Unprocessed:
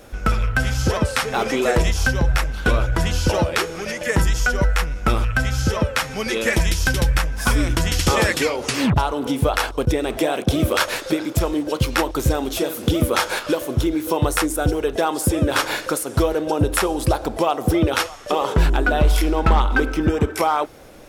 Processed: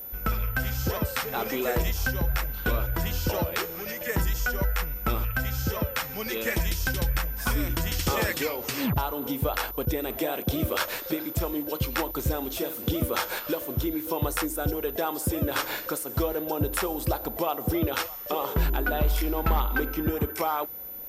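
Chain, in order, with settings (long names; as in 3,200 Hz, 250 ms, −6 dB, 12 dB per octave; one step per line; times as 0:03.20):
steady tone 14,000 Hz −28 dBFS
level −8.5 dB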